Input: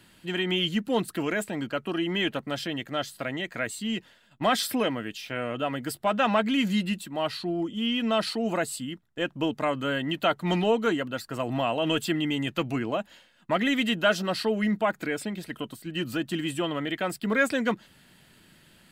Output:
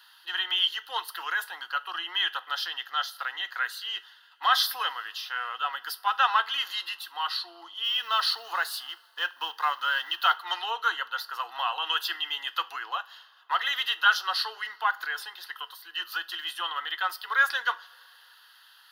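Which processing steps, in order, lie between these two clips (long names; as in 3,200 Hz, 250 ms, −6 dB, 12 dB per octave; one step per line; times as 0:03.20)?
0:07.84–0:10.37: mu-law and A-law mismatch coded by mu
Butterworth high-pass 650 Hz 36 dB per octave
phaser with its sweep stopped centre 2,300 Hz, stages 6
convolution reverb, pre-delay 3 ms, DRR 12 dB
level +6 dB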